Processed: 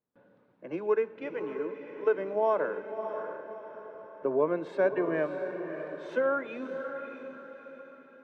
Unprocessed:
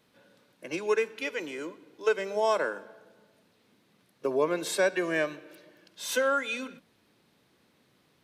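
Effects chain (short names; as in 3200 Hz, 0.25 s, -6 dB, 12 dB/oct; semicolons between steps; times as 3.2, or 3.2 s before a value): LPF 1200 Hz 12 dB/oct; gate with hold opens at -58 dBFS; diffused feedback echo 0.62 s, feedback 43%, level -8 dB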